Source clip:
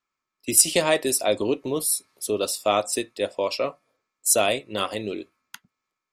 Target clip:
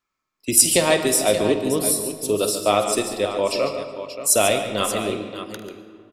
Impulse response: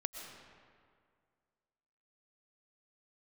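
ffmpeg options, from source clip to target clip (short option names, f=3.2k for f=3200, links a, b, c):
-filter_complex "[0:a]aecho=1:1:49|77|141|578:0.224|0.126|0.299|0.282,asplit=2[a][b];[1:a]atrim=start_sample=2205,lowshelf=f=220:g=9[c];[b][c]afir=irnorm=-1:irlink=0,volume=-0.5dB[d];[a][d]amix=inputs=2:normalize=0,volume=-3dB"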